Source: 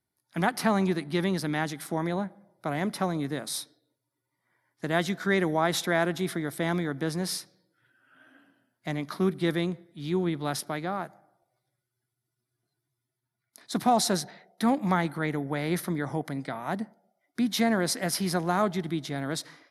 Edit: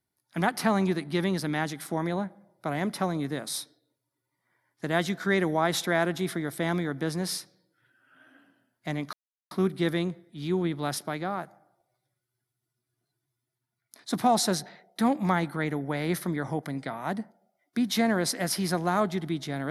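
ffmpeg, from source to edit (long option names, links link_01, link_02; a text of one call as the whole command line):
ffmpeg -i in.wav -filter_complex "[0:a]asplit=2[link_01][link_02];[link_01]atrim=end=9.13,asetpts=PTS-STARTPTS,afade=type=out:start_time=9.126:duration=0.004:curve=hsin,apad=pad_dur=0.38[link_03];[link_02]atrim=start=9.13,asetpts=PTS-STARTPTS,afade=type=in:duration=0.004:curve=hsin[link_04];[link_03][link_04]concat=n=2:v=0:a=1" out.wav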